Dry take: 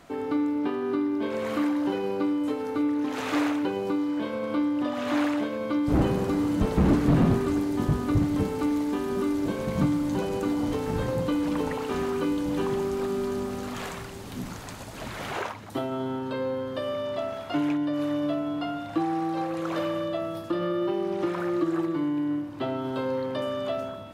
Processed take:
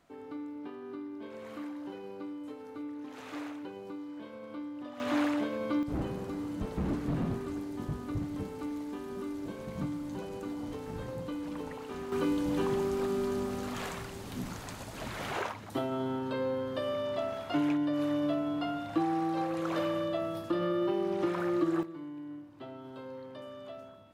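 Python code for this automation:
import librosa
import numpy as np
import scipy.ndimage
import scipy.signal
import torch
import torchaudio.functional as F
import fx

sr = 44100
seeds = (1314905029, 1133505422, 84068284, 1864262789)

y = fx.gain(x, sr, db=fx.steps((0.0, -15.0), (5.0, -4.0), (5.83, -11.5), (12.12, -3.0), (21.83, -15.5)))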